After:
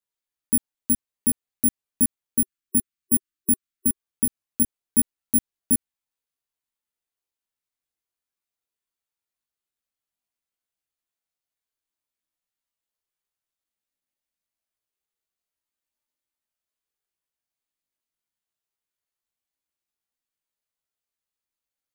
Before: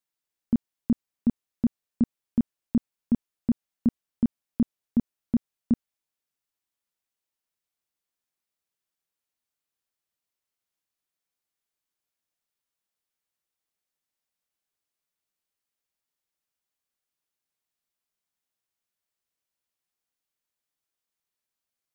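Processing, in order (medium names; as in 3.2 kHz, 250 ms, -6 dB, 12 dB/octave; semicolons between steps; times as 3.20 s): spectral selection erased 2.39–3.94 s, 380–1100 Hz; chorus voices 6, 0.13 Hz, delay 18 ms, depth 2.4 ms; careless resampling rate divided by 4×, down filtered, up zero stuff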